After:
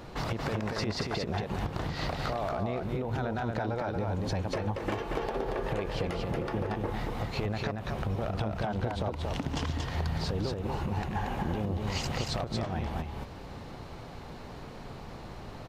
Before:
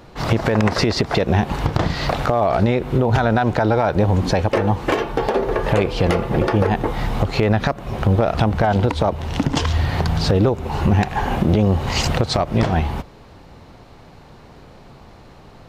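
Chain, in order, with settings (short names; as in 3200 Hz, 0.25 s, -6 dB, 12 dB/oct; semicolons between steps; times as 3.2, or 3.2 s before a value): compressor, threshold -30 dBFS, peak gain reduction 17 dB; echo 0.231 s -3.5 dB; gain -1.5 dB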